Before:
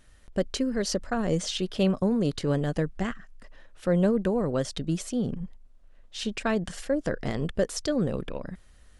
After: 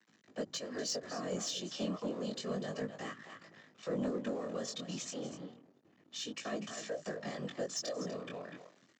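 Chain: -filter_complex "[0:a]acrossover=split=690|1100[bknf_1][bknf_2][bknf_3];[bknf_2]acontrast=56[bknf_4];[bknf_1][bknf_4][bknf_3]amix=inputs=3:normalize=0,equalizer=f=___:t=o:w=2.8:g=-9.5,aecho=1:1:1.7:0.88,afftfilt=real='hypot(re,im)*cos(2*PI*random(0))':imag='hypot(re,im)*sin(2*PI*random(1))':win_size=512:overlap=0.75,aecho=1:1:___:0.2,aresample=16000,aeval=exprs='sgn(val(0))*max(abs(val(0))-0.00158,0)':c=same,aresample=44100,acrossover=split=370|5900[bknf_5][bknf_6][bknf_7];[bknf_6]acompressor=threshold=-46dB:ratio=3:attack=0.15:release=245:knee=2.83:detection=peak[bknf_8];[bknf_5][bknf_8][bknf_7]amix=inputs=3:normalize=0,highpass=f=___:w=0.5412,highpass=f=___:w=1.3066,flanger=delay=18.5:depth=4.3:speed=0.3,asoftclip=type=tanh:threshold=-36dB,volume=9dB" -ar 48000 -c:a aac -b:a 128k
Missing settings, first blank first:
370, 245, 220, 220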